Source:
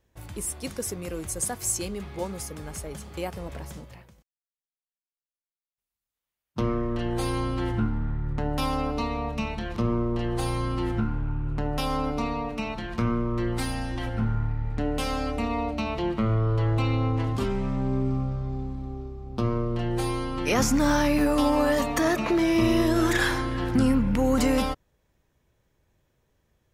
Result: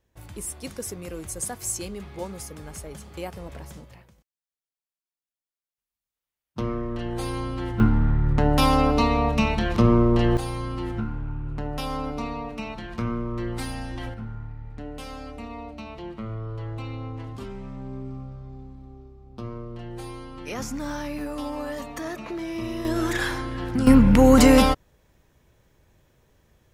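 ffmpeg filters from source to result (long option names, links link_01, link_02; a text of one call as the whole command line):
ffmpeg -i in.wav -af "asetnsamples=nb_out_samples=441:pad=0,asendcmd='7.8 volume volume 8dB;10.37 volume volume -2.5dB;14.14 volume volume -9.5dB;22.85 volume volume -2.5dB;23.87 volume volume 8.5dB',volume=-2dB" out.wav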